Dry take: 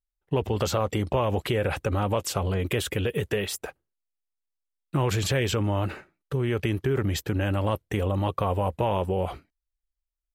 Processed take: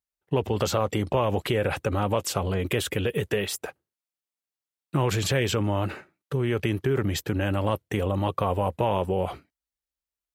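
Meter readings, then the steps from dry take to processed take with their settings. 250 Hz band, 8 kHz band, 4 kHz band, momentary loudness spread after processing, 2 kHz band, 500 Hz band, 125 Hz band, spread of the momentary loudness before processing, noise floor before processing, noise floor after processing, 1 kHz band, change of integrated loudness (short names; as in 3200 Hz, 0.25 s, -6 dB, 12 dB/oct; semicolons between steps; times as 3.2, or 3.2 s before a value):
+1.0 dB, +1.0 dB, +1.0 dB, 6 LU, +1.0 dB, +1.0 dB, -0.5 dB, 6 LU, -85 dBFS, under -85 dBFS, +1.0 dB, +0.5 dB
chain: HPF 89 Hz 12 dB/oct; gain +1 dB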